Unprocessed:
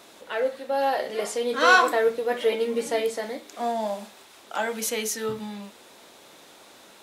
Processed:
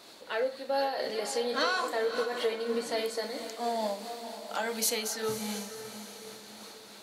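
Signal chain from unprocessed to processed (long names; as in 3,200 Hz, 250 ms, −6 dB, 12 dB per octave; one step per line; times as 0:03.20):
parametric band 4,400 Hz +12 dB 0.23 octaves
downward compressor 4 to 1, threshold −24 dBFS, peak gain reduction 11 dB
0:02.97–0:05.08: high-shelf EQ 5,900 Hz +5 dB
feedback delay with all-pass diffusion 531 ms, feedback 48%, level −10 dB
amplitude modulation by smooth noise, depth 55%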